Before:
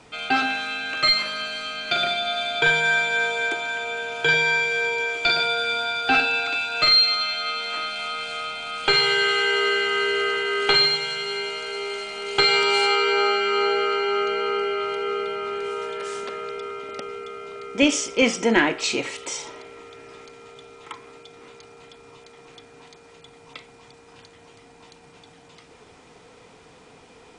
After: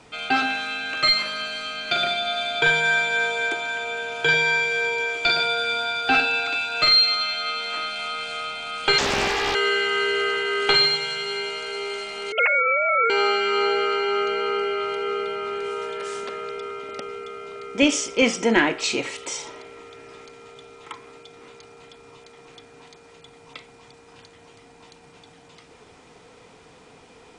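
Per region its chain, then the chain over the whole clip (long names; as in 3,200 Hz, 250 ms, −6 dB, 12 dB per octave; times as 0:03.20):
0:08.98–0:09.55: high-shelf EQ 3,500 Hz −9 dB + highs frequency-modulated by the lows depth 0.68 ms
0:12.32–0:13.10: three sine waves on the formant tracks + low-shelf EQ 240 Hz −11 dB
whole clip: no processing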